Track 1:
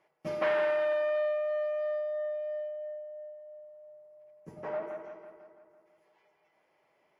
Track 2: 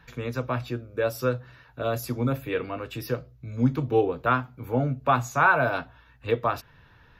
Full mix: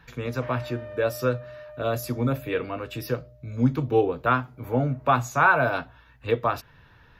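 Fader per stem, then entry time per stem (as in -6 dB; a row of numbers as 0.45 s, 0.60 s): -11.5 dB, +1.0 dB; 0.00 s, 0.00 s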